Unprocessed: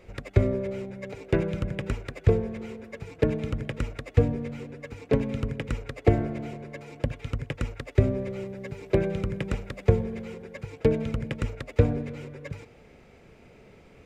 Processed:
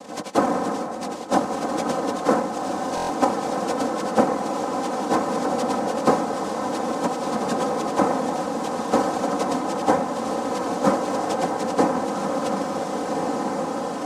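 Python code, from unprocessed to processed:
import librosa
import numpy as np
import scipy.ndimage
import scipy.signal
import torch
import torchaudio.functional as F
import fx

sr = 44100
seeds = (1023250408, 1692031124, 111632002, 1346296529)

y = fx.partial_stretch(x, sr, pct=75)
y = fx.env_lowpass_down(y, sr, base_hz=1200.0, full_db=-22.5)
y = fx.noise_vocoder(y, sr, seeds[0], bands=2)
y = scipy.signal.sosfilt(scipy.signal.butter(2, 150.0, 'highpass', fs=sr, output='sos'), y)
y = y + 0.73 * np.pad(y, (int(3.9 * sr / 1000.0), 0))[:len(y)]
y = fx.echo_diffused(y, sr, ms=1560, feedback_pct=58, wet_db=-5.0)
y = fx.buffer_glitch(y, sr, at_s=(2.95,), block=1024, repeats=5)
y = fx.band_squash(y, sr, depth_pct=40)
y = F.gain(torch.from_numpy(y), 4.5).numpy()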